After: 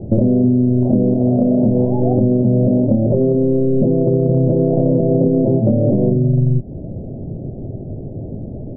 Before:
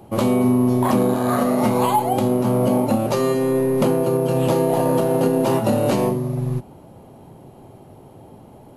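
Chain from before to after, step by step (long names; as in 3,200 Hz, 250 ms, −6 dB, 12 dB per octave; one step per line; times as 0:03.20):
elliptic low-pass filter 640 Hz, stop band 50 dB
spectral tilt −3.5 dB per octave
downward compressor, threshold −20 dBFS, peak gain reduction 13.5 dB
level +8.5 dB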